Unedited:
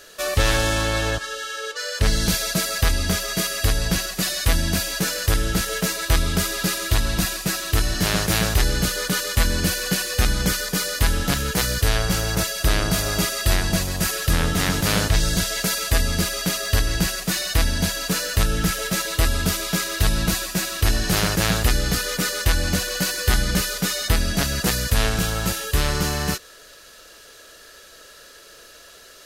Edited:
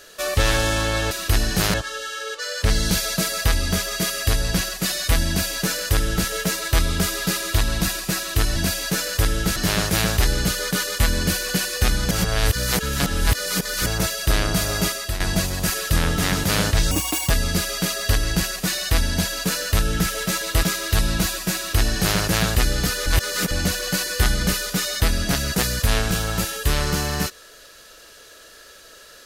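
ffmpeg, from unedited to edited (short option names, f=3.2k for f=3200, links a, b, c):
-filter_complex "[0:a]asplit=13[a][b][c][d][e][f][g][h][i][j][k][l][m];[a]atrim=end=1.112[n];[b]atrim=start=20.638:end=21.272[o];[c]atrim=start=1.108:end=7.932[p];[d]atrim=start=4.648:end=5.652[q];[e]atrim=start=7.928:end=10.482[r];[f]atrim=start=10.478:end=12.232,asetpts=PTS-STARTPTS,areverse[s];[g]atrim=start=12.228:end=13.57,asetpts=PTS-STARTPTS,afade=t=out:st=1.002:d=0.34:silence=0.266073[t];[h]atrim=start=13.57:end=15.284,asetpts=PTS-STARTPTS,afade=t=in:d=0.004:c=hsin:silence=0.266073[u];[i]atrim=start=15.28:end=15.94,asetpts=PTS-STARTPTS,asetrate=74529,aresample=44100,atrim=end_sample=17222,asetpts=PTS-STARTPTS[v];[j]atrim=start=15.936:end=19.272[w];[k]atrim=start=19.708:end=22.142[x];[l]atrim=start=22.138:end=22.592,asetpts=PTS-STARTPTS,areverse[y];[m]atrim=start=22.588[z];[n][o]acrossfade=d=0.004:c1=hsin:c2=hsin[aa];[aa][p]acrossfade=d=0.004:c1=hsin:c2=hsin[ab];[ab][q]acrossfade=d=0.004:c1=hsin:c2=hsin[ac];[ac][r]acrossfade=d=0.004:c1=hsin:c2=hsin[ad];[ad][s]acrossfade=d=0.004:c1=hsin:c2=hsin[ae];[t][u]concat=n=2:v=0:a=1[af];[ae][af]acrossfade=d=0.004:c1=hsin:c2=hsin[ag];[ag][v]acrossfade=d=0.004:c1=hsin:c2=hsin[ah];[ah][w]acrossfade=d=0.004:c1=hsin:c2=hsin[ai];[ai][x]acrossfade=d=0.004:c1=hsin:c2=hsin[aj];[aj][y]acrossfade=d=0.004:c1=hsin:c2=hsin[ak];[ak][z]acrossfade=d=0.004:c1=hsin:c2=hsin"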